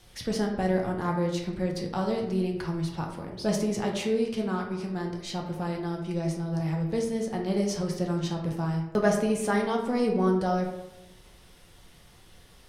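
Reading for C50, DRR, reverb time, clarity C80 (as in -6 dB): 5.0 dB, -0.5 dB, 0.90 s, 8.0 dB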